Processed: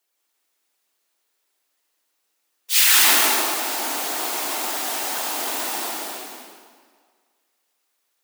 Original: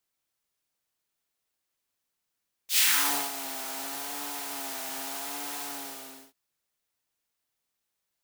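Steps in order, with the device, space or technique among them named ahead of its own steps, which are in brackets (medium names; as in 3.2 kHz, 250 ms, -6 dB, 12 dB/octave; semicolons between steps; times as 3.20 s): whispering ghost (whisper effect; high-pass 280 Hz 24 dB/octave; reverberation RT60 1.8 s, pre-delay 119 ms, DRR -1 dB); trim +7 dB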